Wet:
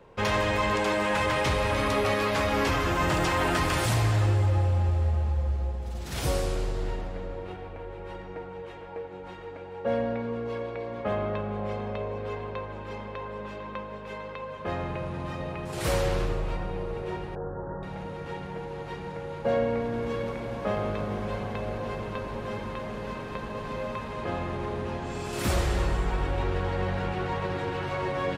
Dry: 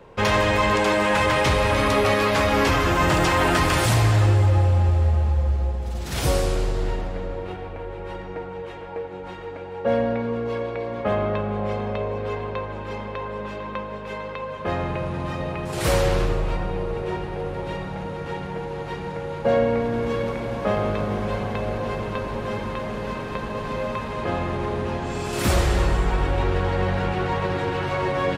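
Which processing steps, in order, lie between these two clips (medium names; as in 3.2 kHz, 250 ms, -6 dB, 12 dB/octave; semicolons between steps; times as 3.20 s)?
17.35–17.83 s: steep low-pass 1.7 kHz 96 dB/octave; trim -6 dB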